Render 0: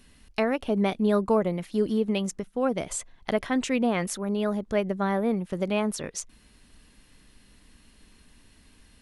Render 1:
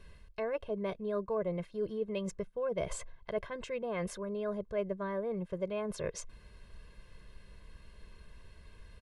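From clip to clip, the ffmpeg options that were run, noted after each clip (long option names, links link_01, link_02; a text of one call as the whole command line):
ffmpeg -i in.wav -af "lowpass=frequency=1600:poles=1,areverse,acompressor=threshold=-34dB:ratio=5,areverse,aecho=1:1:1.9:0.85" out.wav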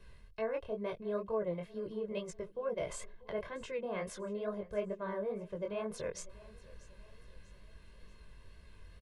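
ffmpeg -i in.wav -filter_complex "[0:a]acrossover=split=330|3300[link_01][link_02][link_03];[link_01]alimiter=level_in=15dB:limit=-24dB:level=0:latency=1,volume=-15dB[link_04];[link_04][link_02][link_03]amix=inputs=3:normalize=0,flanger=delay=18:depth=6.4:speed=2.2,aecho=1:1:640|1280|1920:0.0944|0.0415|0.0183,volume=1dB" out.wav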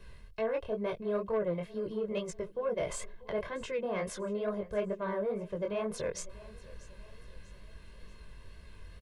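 ffmpeg -i in.wav -af "asoftclip=type=tanh:threshold=-28dB,volume=5dB" out.wav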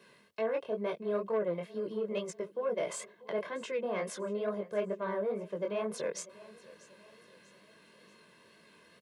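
ffmpeg -i in.wav -af "highpass=frequency=190:width=0.5412,highpass=frequency=190:width=1.3066" out.wav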